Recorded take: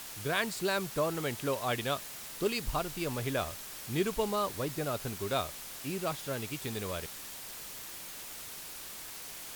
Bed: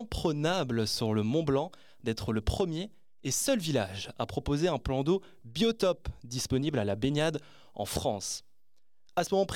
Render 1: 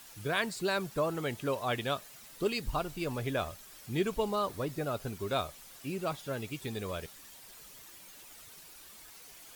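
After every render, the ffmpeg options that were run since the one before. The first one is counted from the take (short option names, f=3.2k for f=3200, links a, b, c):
-af "afftdn=nr=10:nf=-45"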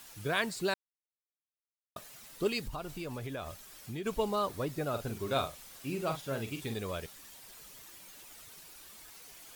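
-filter_complex "[0:a]asplit=3[a][b][c];[a]afade=t=out:st=2.64:d=0.02[d];[b]acompressor=threshold=-36dB:ratio=4:attack=3.2:release=140:knee=1:detection=peak,afade=t=in:st=2.64:d=0.02,afade=t=out:st=4.05:d=0.02[e];[c]afade=t=in:st=4.05:d=0.02[f];[d][e][f]amix=inputs=3:normalize=0,asettb=1/sr,asplit=3[g][h][i];[g]atrim=end=4.894[j];[h]atrim=start=4.89:end=6.74,asetpts=PTS-STARTPTS,afade=t=in:d=0.004:c=qsin,afade=t=out:st=1.846:d=0.004:c=qsin,asplit=2[k][l];[l]adelay=44,volume=-7.5dB[m];[k][m]amix=inputs=2:normalize=0,atrim=end_sample=81585[n];[i]atrim=start=6.736[o];[j][n]acrossfade=d=0.004:c1=hsin:c2=qsin[p];[p][o]acrossfade=d=0.004:c1=qsin:c2=hsin,asplit=3[q][r][s];[q]atrim=end=0.74,asetpts=PTS-STARTPTS,afade=t=out:st=0.736:d=0.004:c=hsin[t];[r]atrim=start=0.74:end=1.96,asetpts=PTS-STARTPTS,volume=0[u];[s]atrim=start=1.96,asetpts=PTS-STARTPTS,afade=t=in:d=0.004:c=hsin[v];[t][u][v]concat=n=3:v=0:a=1"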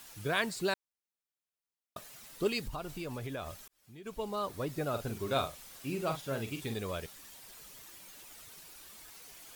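-filter_complex "[0:a]asplit=2[a][b];[a]atrim=end=3.68,asetpts=PTS-STARTPTS,afade=t=out:st=3.676:d=0.004:c=hsin[c];[b]atrim=start=3.68,asetpts=PTS-STARTPTS,afade=t=in:d=1.11[d];[c][d]concat=n=2:v=0:a=1"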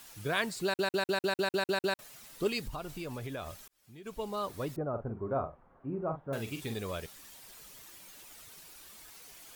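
-filter_complex "[0:a]asettb=1/sr,asplit=3[a][b][c];[a]atrim=end=4.764[d];[b]atrim=start=4.76:end=6.33,asetpts=PTS-STARTPTS,afade=t=in:d=0.004:c=qsin,afade=t=out:st=1.566:d=0.004:c=qsin,lowpass=f=1.2k:w=0.5412,lowpass=f=1.2k:w=1.3066[e];[c]atrim=start=6.326[f];[d][e]acrossfade=d=0.004:c1=hsin:c2=qsin[g];[g][f]acrossfade=d=0.004:c1=qsin:c2=hsin,asplit=10[h][i][j][k][l][m][n][o][p][q];[h]atrim=end=0.792[r];[i]atrim=start=0.638:end=0.792[s];[j]atrim=start=0.638:end=0.792[t];[k]atrim=start=0.638:end=0.792[u];[l]atrim=start=0.638:end=0.792[v];[m]atrim=start=0.638:end=0.792[w];[n]atrim=start=0.638:end=0.792[x];[o]atrim=start=0.638:end=0.792[y];[p]atrim=start=0.638:end=0.792[z];[q]atrim=start=1.988[aa];[r][s]acrossfade=d=0.004:c1=hsin:c2=hsin[ab];[ab][t]acrossfade=d=0.004:c1=hsin:c2=hsin[ac];[ac][u]acrossfade=d=0.004:c1=hsin:c2=hsin[ad];[ad][v]acrossfade=d=0.004:c1=hsin:c2=hsin[ae];[ae][w]acrossfade=d=0.004:c1=hsin:c2=hsin[af];[af][x]acrossfade=d=0.004:c1=hsin:c2=hsin[ag];[ag][y]acrossfade=d=0.004:c1=hsin:c2=hsin[ah];[ah][z]acrossfade=d=0.004:c1=hsin:c2=hsin[ai];[ai][aa]acrossfade=d=0.004:c1=hsin:c2=hsin"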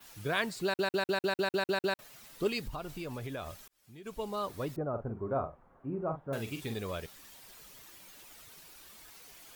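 -af "adynamicequalizer=threshold=0.00158:dfrequency=9200:dqfactor=0.72:tfrequency=9200:tqfactor=0.72:attack=5:release=100:ratio=0.375:range=2.5:mode=cutabove:tftype=bell"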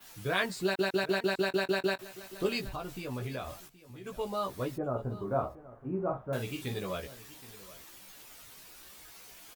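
-filter_complex "[0:a]asplit=2[a][b];[b]adelay=16,volume=-3.5dB[c];[a][c]amix=inputs=2:normalize=0,aecho=1:1:773:0.126"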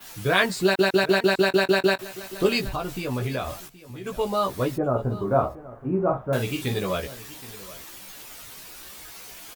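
-af "volume=9.5dB"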